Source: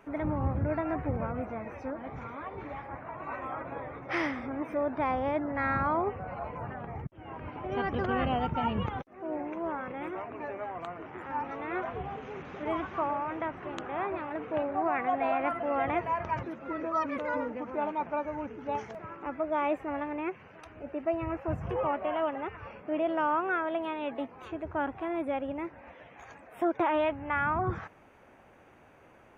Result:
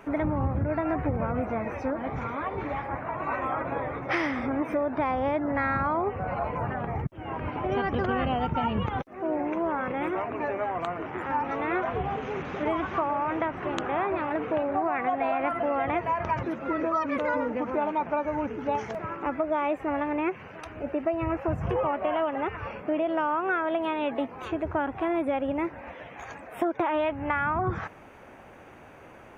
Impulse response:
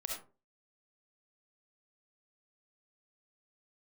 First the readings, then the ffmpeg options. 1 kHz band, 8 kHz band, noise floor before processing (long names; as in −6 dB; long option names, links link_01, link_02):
+3.5 dB, can't be measured, −57 dBFS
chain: -af "acompressor=threshold=-32dB:ratio=6,volume=8.5dB"